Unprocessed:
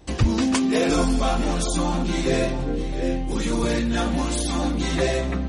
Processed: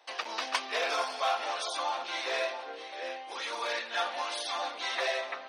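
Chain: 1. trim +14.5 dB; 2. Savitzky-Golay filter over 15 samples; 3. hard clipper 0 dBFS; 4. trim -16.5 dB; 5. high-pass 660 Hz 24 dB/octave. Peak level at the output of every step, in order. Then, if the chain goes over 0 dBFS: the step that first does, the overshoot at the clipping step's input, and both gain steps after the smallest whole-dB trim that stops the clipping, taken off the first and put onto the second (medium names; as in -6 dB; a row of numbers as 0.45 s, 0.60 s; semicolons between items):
+4.5 dBFS, +4.5 dBFS, 0.0 dBFS, -16.5 dBFS, -13.5 dBFS; step 1, 4.5 dB; step 1 +9.5 dB, step 4 -11.5 dB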